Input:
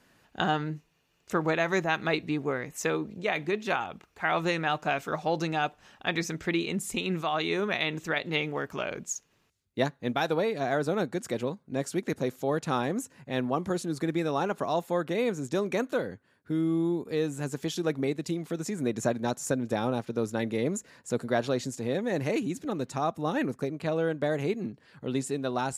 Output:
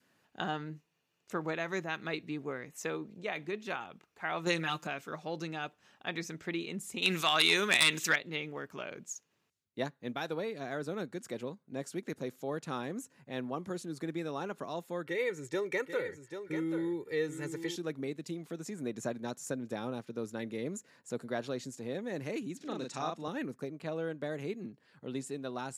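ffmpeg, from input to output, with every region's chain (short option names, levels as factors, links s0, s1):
-filter_complex "[0:a]asettb=1/sr,asplit=3[s0][s1][s2];[s0]atrim=end=4.464[s3];[s1]atrim=start=4.46:end=4.87,asetpts=PTS-STARTPTS,afade=t=in:d=0.004:c=qsin,afade=t=out:st=0.406:d=0.004:c=qsin,highshelf=f=4100:g=10.5,aecho=1:1:5.8:0.94,atrim=end_sample=18081[s4];[s2]atrim=start=4.866[s5];[s3][s4]acrossfade=d=0.004:c1=hsin:c2=qsin[s6];[s6][s5]acrossfade=d=0.004:c1=qsin:c2=hsin,asettb=1/sr,asplit=3[s7][s8][s9];[s7]atrim=end=7.024[s10];[s8]atrim=start=7.02:end=8.16,asetpts=PTS-STARTPTS,afade=t=in:d=0.004:c=qsin,afade=t=out:st=1.136:d=0.004:c=qsin,tiltshelf=f=1500:g=-9.5,aeval=exprs='0.376*sin(PI/2*2.82*val(0)/0.376)':c=same[s11];[s9]atrim=start=8.156[s12];[s10][s11]acrossfade=d=0.004:c1=hsin:c2=qsin[s13];[s13][s12]acrossfade=d=0.004:c1=qsin:c2=hsin,asettb=1/sr,asplit=3[s14][s15][s16];[s14]atrim=end=15.064[s17];[s15]atrim=start=15.06:end=17.76,asetpts=PTS-STARTPTS,afade=t=in:d=0.004:c=qsin,afade=t=out:st=2.696:d=0.004:c=qsin,equalizer=f=2000:t=o:w=0.31:g=14,aecho=1:1:2.2:0.81,atrim=end_sample=119070,aecho=1:1:788:0.355,atrim=end_sample=119070[s18];[s16]atrim=start=17.756[s19];[s17][s18]acrossfade=d=0.004:c1=hsin:c2=qsin[s20];[s20][s19]acrossfade=d=0.004:c1=qsin:c2=hsin,asettb=1/sr,asplit=3[s21][s22][s23];[s21]atrim=end=22.574[s24];[s22]atrim=start=22.57:end=23.28,asetpts=PTS-STARTPTS,afade=t=in:d=0.004:c=qsin,afade=t=out:st=0.706:d=0.004:c=qsin,highpass=140,lowpass=5700,highshelf=f=2500:g=10.5,asplit=2[s25][s26];[s26]adelay=38,volume=0.708[s27];[s25][s27]amix=inputs=2:normalize=0,atrim=end_sample=31311[s28];[s23]atrim=start=23.276[s29];[s24][s28]acrossfade=d=0.004:c1=hsin:c2=qsin[s30];[s30][s29]acrossfade=d=0.004:c1=qsin:c2=hsin,highpass=120,adynamicequalizer=threshold=0.00708:dfrequency=760:dqfactor=1.8:tfrequency=760:tqfactor=1.8:attack=5:release=100:ratio=0.375:range=3:mode=cutabove:tftype=bell,volume=0.398"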